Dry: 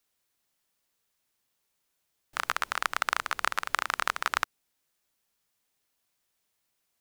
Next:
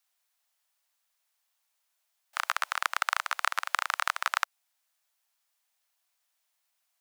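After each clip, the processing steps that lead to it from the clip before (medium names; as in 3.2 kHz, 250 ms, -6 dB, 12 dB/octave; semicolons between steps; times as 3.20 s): steep high-pass 610 Hz 48 dB/octave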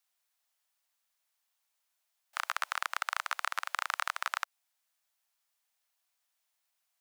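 peak limiter -13 dBFS, peak gain reduction 4.5 dB; trim -3 dB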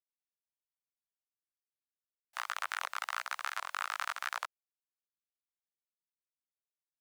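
bit crusher 11-bit; chorus voices 2, 0.92 Hz, delay 18 ms, depth 3 ms; warped record 78 rpm, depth 250 cents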